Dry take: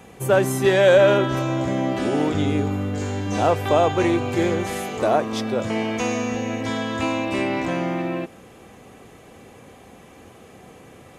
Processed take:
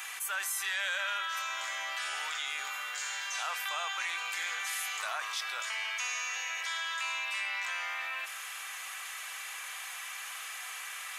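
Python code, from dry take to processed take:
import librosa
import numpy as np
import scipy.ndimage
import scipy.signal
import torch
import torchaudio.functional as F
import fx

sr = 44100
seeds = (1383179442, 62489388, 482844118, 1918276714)

y = scipy.signal.sosfilt(scipy.signal.butter(4, 1300.0, 'highpass', fs=sr, output='sos'), x)
y = fx.high_shelf(y, sr, hz=10000.0, db=5.0)
y = fx.env_flatten(y, sr, amount_pct=70)
y = y * librosa.db_to_amplitude(-9.0)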